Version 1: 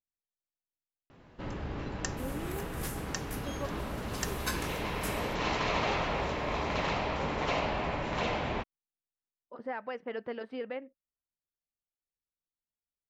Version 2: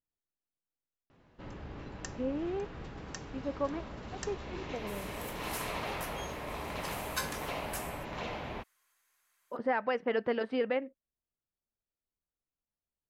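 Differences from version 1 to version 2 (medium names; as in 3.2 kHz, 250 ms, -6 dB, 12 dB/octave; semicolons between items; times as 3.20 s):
speech +7.0 dB; first sound -7.0 dB; second sound: entry +2.70 s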